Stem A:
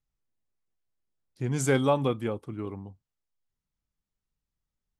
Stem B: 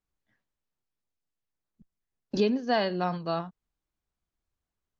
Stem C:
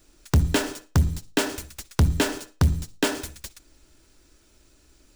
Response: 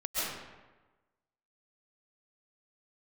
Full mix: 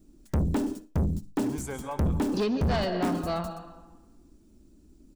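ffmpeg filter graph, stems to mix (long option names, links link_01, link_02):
-filter_complex "[0:a]equalizer=frequency=940:width_type=o:width=0.72:gain=11.5,highshelf=frequency=8400:gain=11.5,volume=-10.5dB,afade=type=out:start_time=1.48:duration=0.3:silence=0.421697,asplit=2[link_01][link_02];[link_02]volume=-12dB[link_03];[1:a]volume=1dB,asplit=2[link_04][link_05];[link_05]volume=-16dB[link_06];[2:a]firequalizer=gain_entry='entry(140,0);entry(200,11);entry(480,-7);entry(1600,-19);entry(8600,-12)':delay=0.05:min_phase=1,volume=1.5dB[link_07];[3:a]atrim=start_sample=2205[link_08];[link_03][link_06]amix=inputs=2:normalize=0[link_09];[link_09][link_08]afir=irnorm=-1:irlink=0[link_10];[link_01][link_04][link_07][link_10]amix=inputs=4:normalize=0,asoftclip=type=tanh:threshold=-22dB"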